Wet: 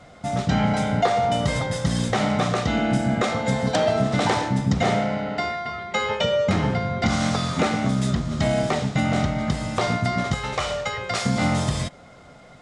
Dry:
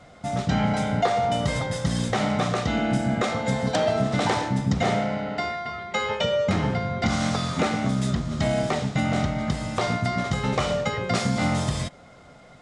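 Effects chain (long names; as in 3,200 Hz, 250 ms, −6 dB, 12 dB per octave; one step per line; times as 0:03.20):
0:10.34–0:11.26: parametric band 210 Hz −14 dB 1.9 octaves
level +2 dB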